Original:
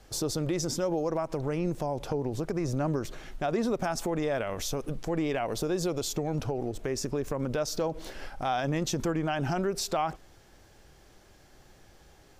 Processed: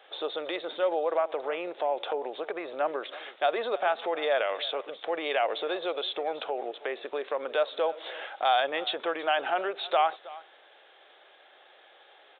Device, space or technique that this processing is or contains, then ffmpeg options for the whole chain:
musical greeting card: -af "equalizer=f=990:t=o:w=0.23:g=-4,aecho=1:1:321:0.112,aresample=8000,aresample=44100,highpass=f=510:w=0.5412,highpass=f=510:w=1.3066,equalizer=f=3.6k:t=o:w=0.36:g=6.5,volume=6dB"

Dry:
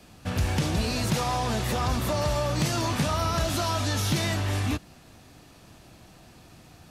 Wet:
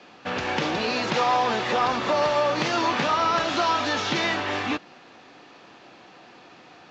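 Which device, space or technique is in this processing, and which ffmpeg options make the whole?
telephone: -af "highpass=380,lowpass=3.3k,bandreject=f=640:w=12,volume=8dB" -ar 16000 -c:a pcm_mulaw

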